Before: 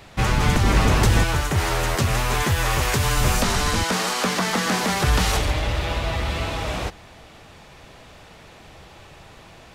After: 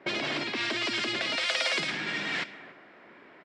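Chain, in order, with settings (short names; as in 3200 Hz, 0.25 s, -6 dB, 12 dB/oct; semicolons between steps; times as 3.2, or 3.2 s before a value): wide varispeed 2.83×; compressor 4:1, threshold -26 dBFS, peak gain reduction 11 dB; speaker cabinet 460–6900 Hz, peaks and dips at 490 Hz -8 dB, 860 Hz -7 dB, 1200 Hz -6 dB, 2100 Hz +3 dB, 6400 Hz -9 dB; on a send: echo 0.284 s -14.5 dB; on the sum: low-pass opened by the level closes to 850 Hz, open at -25.5 dBFS; gain +3 dB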